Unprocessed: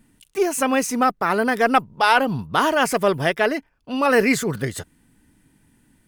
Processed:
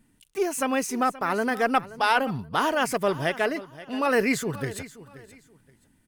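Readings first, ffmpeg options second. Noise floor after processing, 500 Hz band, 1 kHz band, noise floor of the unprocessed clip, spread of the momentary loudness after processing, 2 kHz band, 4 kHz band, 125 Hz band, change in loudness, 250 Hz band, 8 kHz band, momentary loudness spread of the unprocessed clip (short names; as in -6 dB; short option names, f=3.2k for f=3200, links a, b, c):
-64 dBFS, -5.5 dB, -5.5 dB, -63 dBFS, 11 LU, -5.5 dB, -5.5 dB, -5.5 dB, -5.5 dB, -5.5 dB, -5.5 dB, 11 LU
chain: -af "aecho=1:1:527|1054:0.141|0.0367,volume=-5.5dB"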